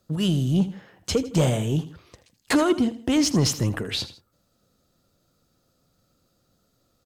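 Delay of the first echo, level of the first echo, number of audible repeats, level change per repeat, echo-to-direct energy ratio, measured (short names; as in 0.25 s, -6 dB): 80 ms, -15.0 dB, 2, -8.0 dB, -14.5 dB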